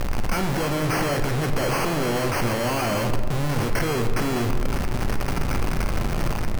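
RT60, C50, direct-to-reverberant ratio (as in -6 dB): 1.7 s, 7.5 dB, 5.0 dB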